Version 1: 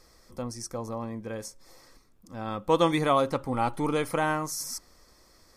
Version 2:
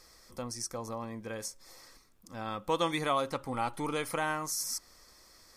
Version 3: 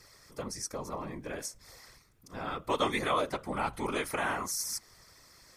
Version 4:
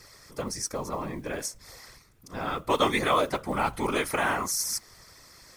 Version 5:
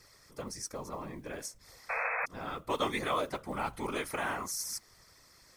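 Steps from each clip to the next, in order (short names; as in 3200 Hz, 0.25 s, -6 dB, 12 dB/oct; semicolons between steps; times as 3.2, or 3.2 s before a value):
tilt shelf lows -4 dB, about 920 Hz; in parallel at +2 dB: compressor, threshold -34 dBFS, peak gain reduction 15 dB; on the sum: gain -8 dB
bell 2000 Hz +3.5 dB 0.79 oct; whisperiser
modulation noise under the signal 29 dB; gain +5.5 dB
painted sound noise, 1.89–2.26, 450–2600 Hz -25 dBFS; gain -8 dB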